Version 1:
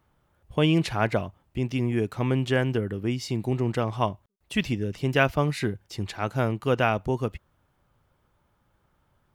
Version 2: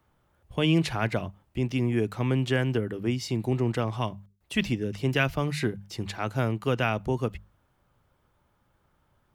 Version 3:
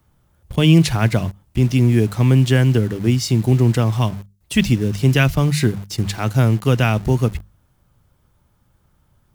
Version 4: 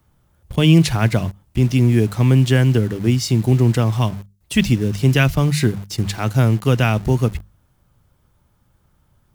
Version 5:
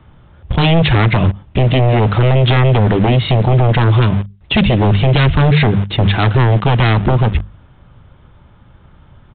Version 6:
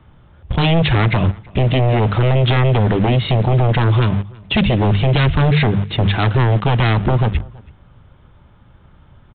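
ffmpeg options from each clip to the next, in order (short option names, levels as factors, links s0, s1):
-filter_complex "[0:a]bandreject=f=50:t=h:w=6,bandreject=f=100:t=h:w=6,bandreject=f=150:t=h:w=6,bandreject=f=200:t=h:w=6,acrossover=split=250|1600[s0][s1][s2];[s1]alimiter=limit=0.1:level=0:latency=1:release=159[s3];[s0][s3][s2]amix=inputs=3:normalize=0"
-filter_complex "[0:a]bass=f=250:g=9,treble=f=4000:g=9,asplit=2[s0][s1];[s1]acrusher=bits=5:mix=0:aa=0.000001,volume=0.501[s2];[s0][s2]amix=inputs=2:normalize=0,volume=1.26"
-af anull
-af "alimiter=limit=0.237:level=0:latency=1:release=136,aresample=8000,aeval=exprs='0.251*sin(PI/2*2.24*val(0)/0.251)':c=same,aresample=44100,volume=1.78"
-filter_complex "[0:a]asplit=2[s0][s1];[s1]adelay=326.5,volume=0.0631,highshelf=f=4000:g=-7.35[s2];[s0][s2]amix=inputs=2:normalize=0,volume=0.708"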